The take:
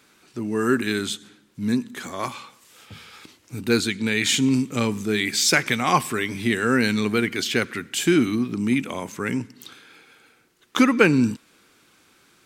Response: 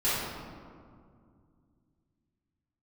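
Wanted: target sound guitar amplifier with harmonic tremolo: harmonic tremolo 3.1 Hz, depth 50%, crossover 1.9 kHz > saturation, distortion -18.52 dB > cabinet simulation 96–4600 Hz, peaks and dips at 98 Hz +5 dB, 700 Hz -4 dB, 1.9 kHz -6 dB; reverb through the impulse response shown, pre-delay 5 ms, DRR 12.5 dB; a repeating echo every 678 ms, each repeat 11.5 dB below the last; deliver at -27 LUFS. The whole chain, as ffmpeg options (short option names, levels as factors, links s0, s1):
-filter_complex "[0:a]aecho=1:1:678|1356|2034:0.266|0.0718|0.0194,asplit=2[s0][s1];[1:a]atrim=start_sample=2205,adelay=5[s2];[s1][s2]afir=irnorm=-1:irlink=0,volume=0.0596[s3];[s0][s3]amix=inputs=2:normalize=0,acrossover=split=1900[s4][s5];[s4]aeval=exprs='val(0)*(1-0.5/2+0.5/2*cos(2*PI*3.1*n/s))':c=same[s6];[s5]aeval=exprs='val(0)*(1-0.5/2-0.5/2*cos(2*PI*3.1*n/s))':c=same[s7];[s6][s7]amix=inputs=2:normalize=0,asoftclip=threshold=0.251,highpass=96,equalizer=f=98:t=q:w=4:g=5,equalizer=f=700:t=q:w=4:g=-4,equalizer=f=1900:t=q:w=4:g=-6,lowpass=f=4600:w=0.5412,lowpass=f=4600:w=1.3066,volume=0.944"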